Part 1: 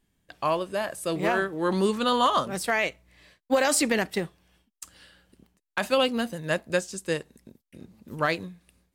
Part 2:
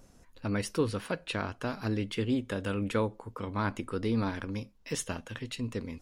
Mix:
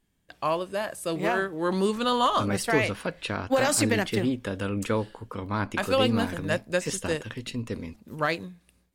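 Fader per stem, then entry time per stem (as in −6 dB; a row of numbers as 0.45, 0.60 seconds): −1.0, +2.5 decibels; 0.00, 1.95 seconds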